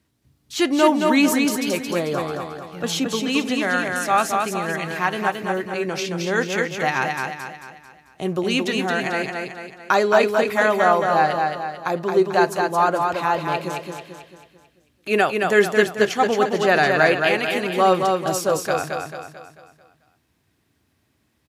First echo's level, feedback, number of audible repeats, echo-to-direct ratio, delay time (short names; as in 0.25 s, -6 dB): -4.0 dB, 46%, 5, -3.0 dB, 0.221 s